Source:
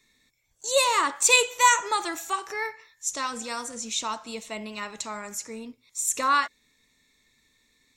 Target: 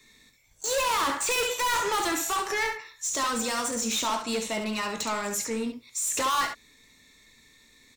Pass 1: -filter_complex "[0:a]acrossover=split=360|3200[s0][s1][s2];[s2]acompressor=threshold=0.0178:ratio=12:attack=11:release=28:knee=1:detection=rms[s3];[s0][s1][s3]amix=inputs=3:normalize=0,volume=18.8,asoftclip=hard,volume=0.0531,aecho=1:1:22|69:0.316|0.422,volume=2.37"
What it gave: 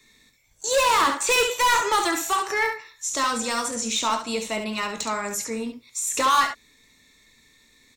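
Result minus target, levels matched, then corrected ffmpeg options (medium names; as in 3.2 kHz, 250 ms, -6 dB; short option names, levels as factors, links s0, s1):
overload inside the chain: distortion -4 dB
-filter_complex "[0:a]acrossover=split=360|3200[s0][s1][s2];[s2]acompressor=threshold=0.0178:ratio=12:attack=11:release=28:knee=1:detection=rms[s3];[s0][s1][s3]amix=inputs=3:normalize=0,volume=44.7,asoftclip=hard,volume=0.0224,aecho=1:1:22|69:0.316|0.422,volume=2.37"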